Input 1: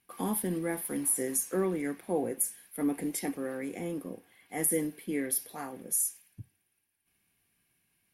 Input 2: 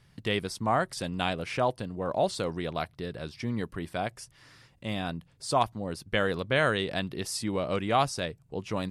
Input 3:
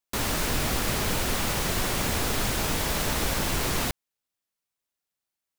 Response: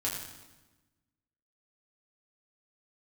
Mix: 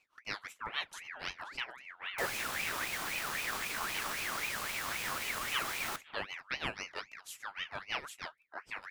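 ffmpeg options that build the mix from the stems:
-filter_complex "[0:a]lowpass=f=2.5k:w=0.5412,lowpass=f=2.5k:w=1.3066,adelay=500,volume=-11dB[a];[1:a]tremolo=f=6.3:d=0.9,volume=-2.5dB[b];[2:a]acrusher=bits=5:mix=0:aa=0.000001,adelay=2050,volume=-4.5dB[c];[a][b][c]amix=inputs=3:normalize=0,flanger=delay=5.7:depth=5.9:regen=69:speed=1.1:shape=sinusoidal,aeval=exprs='val(0)*sin(2*PI*1800*n/s+1800*0.4/3.8*sin(2*PI*3.8*n/s))':c=same"

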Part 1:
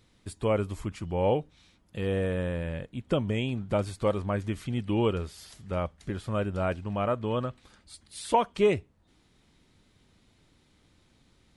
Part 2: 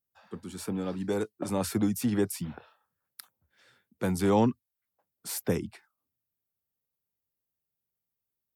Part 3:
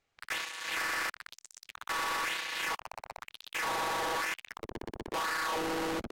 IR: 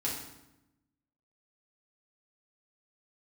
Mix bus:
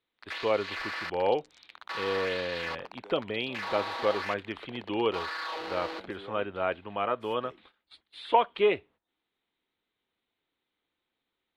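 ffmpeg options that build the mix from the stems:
-filter_complex "[0:a]highshelf=f=4.7k:t=q:w=3:g=-8,bandreject=f=590:w=12,volume=1.5dB[a];[1:a]adelay=1950,volume=-18dB[b];[2:a]equalizer=f=4.3k:w=2.2:g=12,volume=-3dB[c];[a][b][c]amix=inputs=3:normalize=0,agate=range=-17dB:threshold=-50dB:ratio=16:detection=peak,acrossover=split=320 3600:gain=0.112 1 0.141[d][e][f];[d][e][f]amix=inputs=3:normalize=0"

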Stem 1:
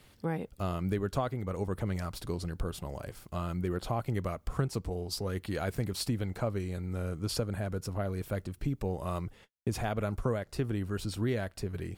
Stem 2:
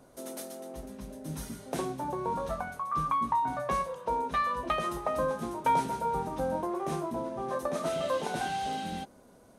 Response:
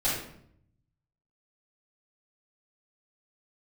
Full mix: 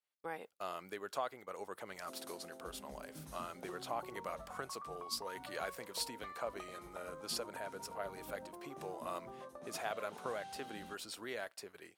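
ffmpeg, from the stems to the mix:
-filter_complex "[0:a]highpass=640,volume=-3dB[a];[1:a]acompressor=threshold=-36dB:ratio=16,adelay=1900,volume=-10.5dB[b];[a][b]amix=inputs=2:normalize=0,agate=range=-33dB:threshold=-49dB:ratio=3:detection=peak"

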